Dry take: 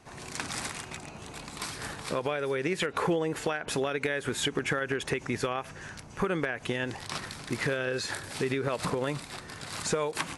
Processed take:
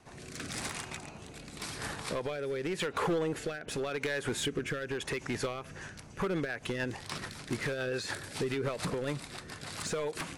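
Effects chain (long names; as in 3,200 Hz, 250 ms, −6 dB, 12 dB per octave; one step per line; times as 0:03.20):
hard clipping −26 dBFS, distortion −11 dB
rotating-speaker cabinet horn 0.9 Hz, later 7 Hz, at 0:05.40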